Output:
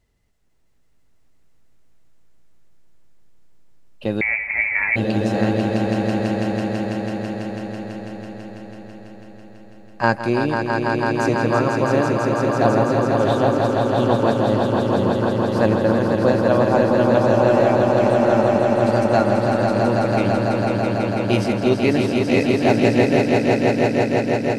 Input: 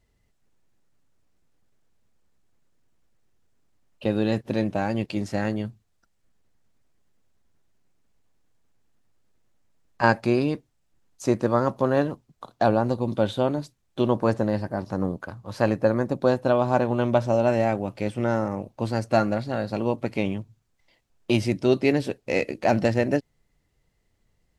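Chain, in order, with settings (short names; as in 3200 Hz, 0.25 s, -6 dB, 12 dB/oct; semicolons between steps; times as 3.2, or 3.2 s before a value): on a send: swelling echo 0.165 s, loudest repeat 5, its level -5 dB; 4.21–4.96 on the sum: inverted band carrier 2500 Hz; gain +1.5 dB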